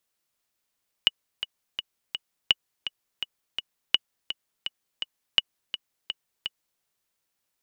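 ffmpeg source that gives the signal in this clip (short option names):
-f lavfi -i "aevalsrc='pow(10,(-4.5-11.5*gte(mod(t,4*60/167),60/167))/20)*sin(2*PI*2930*mod(t,60/167))*exp(-6.91*mod(t,60/167)/0.03)':d=5.74:s=44100"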